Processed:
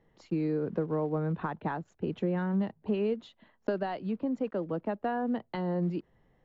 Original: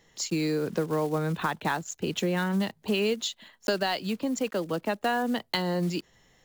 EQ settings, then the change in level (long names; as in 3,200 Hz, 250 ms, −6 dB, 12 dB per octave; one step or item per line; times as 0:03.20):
head-to-tape spacing loss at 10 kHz 32 dB
high-shelf EQ 2,200 Hz −11.5 dB
−1.0 dB